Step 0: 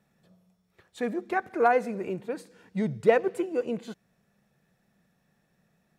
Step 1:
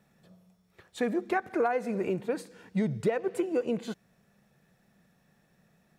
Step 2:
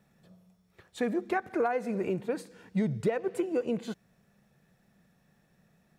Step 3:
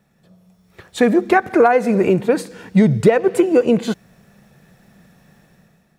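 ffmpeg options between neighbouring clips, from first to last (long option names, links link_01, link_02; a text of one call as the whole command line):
ffmpeg -i in.wav -af "acompressor=threshold=-27dB:ratio=16,volume=3.5dB" out.wav
ffmpeg -i in.wav -af "lowshelf=frequency=170:gain=3.5,volume=-1.5dB" out.wav
ffmpeg -i in.wav -af "dynaudnorm=framelen=130:gausssize=9:maxgain=11dB,volume=5dB" out.wav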